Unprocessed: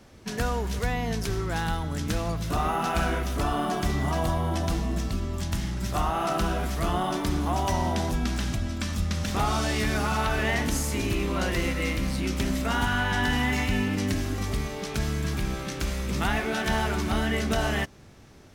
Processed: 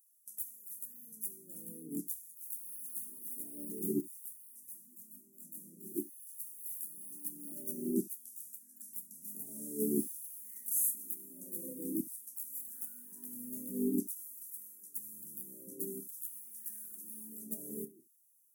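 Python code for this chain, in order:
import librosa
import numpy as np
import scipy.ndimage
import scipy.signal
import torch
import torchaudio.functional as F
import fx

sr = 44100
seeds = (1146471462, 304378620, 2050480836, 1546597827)

y = fx.filter_lfo_highpass(x, sr, shape='saw_down', hz=0.5, low_hz=350.0, high_hz=4200.0, q=7.2)
y = scipy.signal.sosfilt(scipy.signal.cheby2(4, 70, [710.0, 4300.0], 'bandstop', fs=sr, output='sos'), y)
y = fx.peak_eq(y, sr, hz=14000.0, db=-13.5, octaves=0.47)
y = fx.chorus_voices(y, sr, voices=4, hz=1.2, base_ms=21, depth_ms=3.0, mix_pct=55, at=(4.01, 6.4))
y = scipy.signal.sosfilt(scipy.signal.butter(4, 220.0, 'highpass', fs=sr, output='sos'), y)
y = fx.tilt_eq(y, sr, slope=1.5)
y = fx.room_early_taps(y, sr, ms=(28, 69), db=(-11.0, -17.0))
y = fx.upward_expand(y, sr, threshold_db=-57.0, expansion=1.5)
y = F.gain(torch.from_numpy(y), 17.5).numpy()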